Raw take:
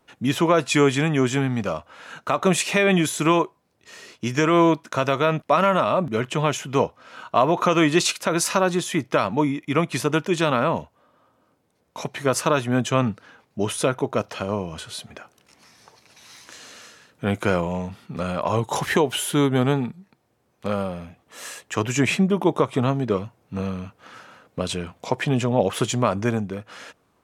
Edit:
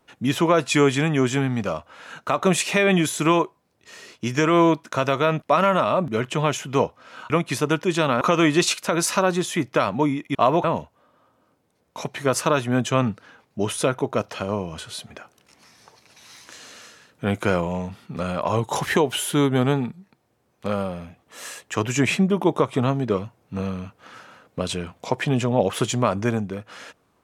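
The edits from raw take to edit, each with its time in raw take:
7.3–7.59 swap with 9.73–10.64

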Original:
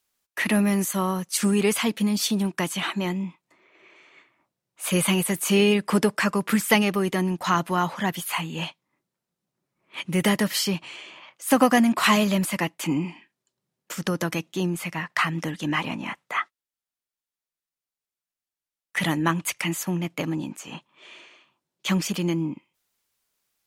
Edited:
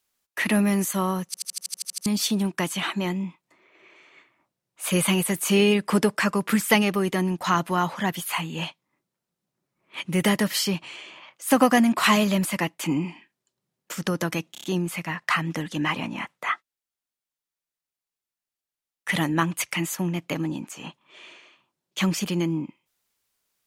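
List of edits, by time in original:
1.26 stutter in place 0.08 s, 10 plays
14.52 stutter 0.03 s, 5 plays

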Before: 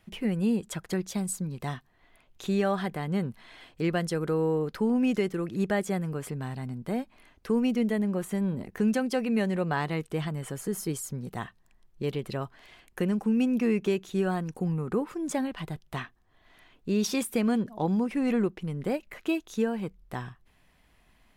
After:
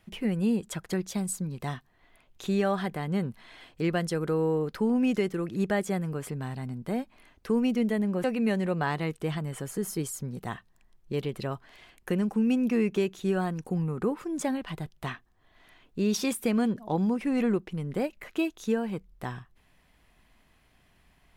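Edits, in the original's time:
8.24–9.14 cut

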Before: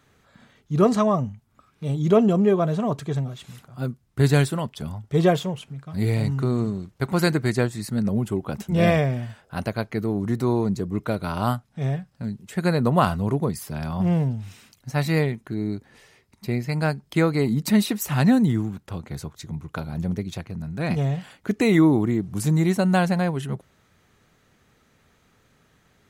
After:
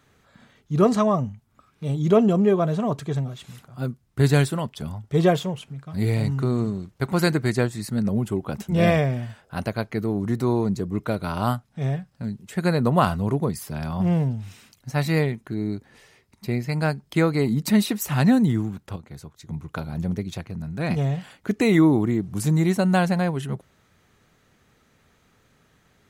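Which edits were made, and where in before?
18.96–19.49 gain -7 dB

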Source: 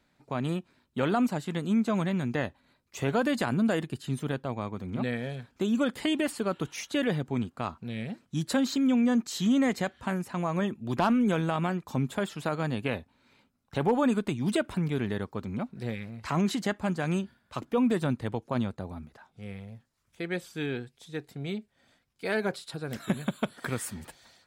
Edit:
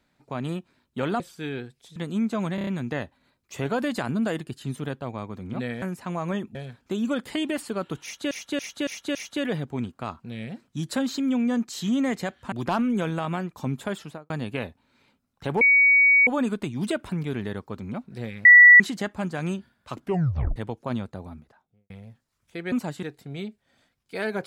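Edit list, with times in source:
1.2–1.51 swap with 20.37–21.13
2.1 stutter 0.03 s, 5 plays
6.73–7.01 loop, 5 plays
10.1–10.83 move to 5.25
12.3–12.61 studio fade out
13.92 add tone 2250 Hz -13.5 dBFS 0.66 s
16.1–16.45 bleep 1950 Hz -7 dBFS
17.67 tape stop 0.54 s
18.9–19.55 studio fade out

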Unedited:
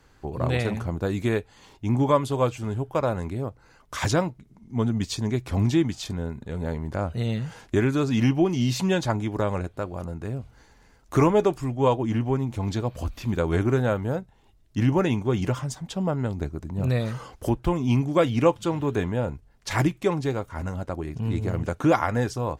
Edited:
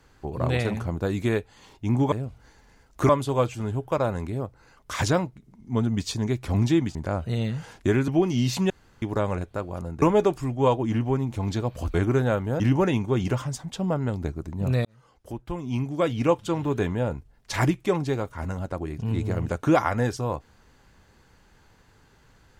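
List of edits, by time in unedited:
5.98–6.83 cut
7.96–8.31 cut
8.93–9.25 room tone
10.25–11.22 move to 2.12
13.14–13.52 cut
14.18–14.77 cut
17.02–18.8 fade in

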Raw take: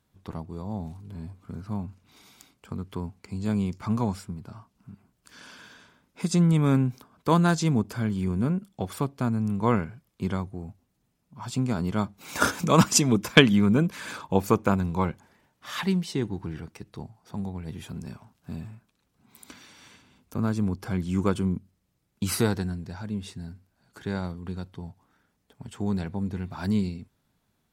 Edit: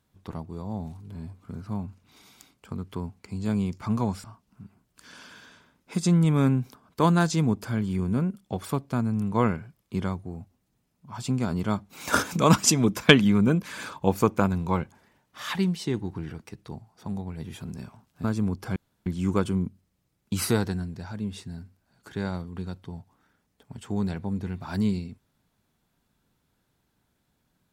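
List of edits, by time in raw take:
4.24–4.52 cut
18.52–20.44 cut
20.96 insert room tone 0.30 s

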